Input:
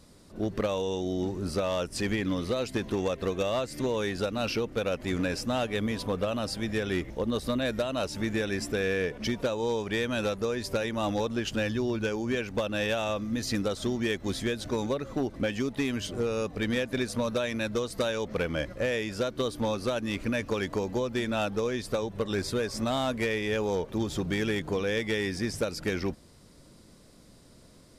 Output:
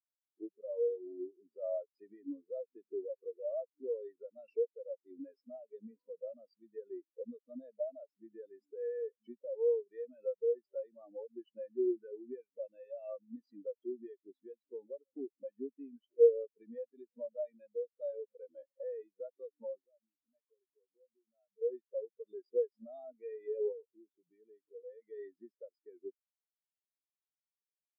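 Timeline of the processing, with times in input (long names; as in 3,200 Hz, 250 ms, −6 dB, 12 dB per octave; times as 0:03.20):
0:19.81–0:21.62: downward compressor 8 to 1, threshold −35 dBFS
0:23.72–0:25.02: downward compressor 3 to 1, threshold −31 dBFS
whole clip: high-pass filter 310 Hz 12 dB per octave; brickwall limiter −22.5 dBFS; every bin expanded away from the loudest bin 4 to 1; level +7.5 dB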